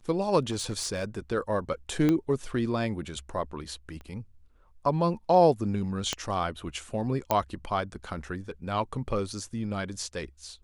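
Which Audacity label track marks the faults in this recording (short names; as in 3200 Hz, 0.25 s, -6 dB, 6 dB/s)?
0.510000	1.190000	clipped -26 dBFS
2.090000	2.090000	pop -13 dBFS
4.010000	4.010000	pop -32 dBFS
6.130000	6.130000	pop -13 dBFS
7.310000	7.310000	pop -10 dBFS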